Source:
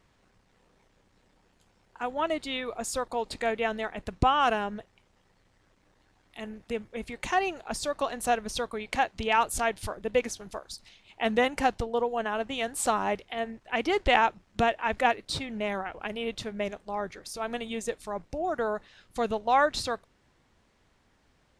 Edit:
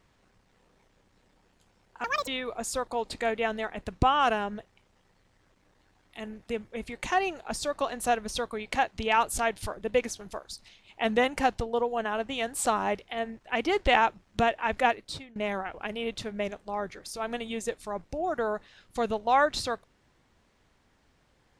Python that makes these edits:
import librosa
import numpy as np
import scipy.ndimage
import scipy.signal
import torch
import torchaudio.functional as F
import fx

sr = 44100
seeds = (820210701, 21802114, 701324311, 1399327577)

y = fx.edit(x, sr, fx.speed_span(start_s=2.04, length_s=0.44, speed=1.86),
    fx.fade_out_to(start_s=15.08, length_s=0.48, floor_db=-21.5), tone=tone)